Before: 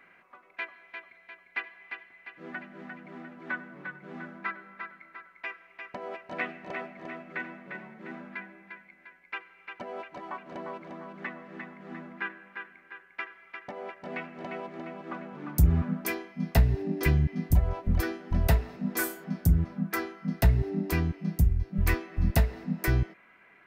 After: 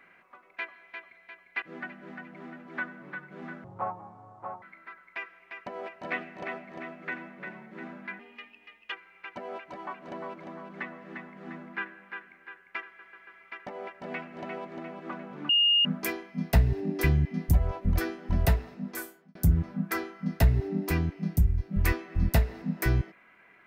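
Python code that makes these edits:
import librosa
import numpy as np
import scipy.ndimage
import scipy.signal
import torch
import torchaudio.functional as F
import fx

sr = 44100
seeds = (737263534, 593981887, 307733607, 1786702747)

y = fx.edit(x, sr, fx.cut(start_s=1.62, length_s=0.72),
    fx.speed_span(start_s=4.36, length_s=0.54, speed=0.55),
    fx.speed_span(start_s=8.47, length_s=0.89, speed=1.22),
    fx.stutter(start_s=13.29, slice_s=0.14, count=4),
    fx.bleep(start_s=15.51, length_s=0.36, hz=2840.0, db=-19.0),
    fx.fade_out_span(start_s=18.47, length_s=0.9), tone=tone)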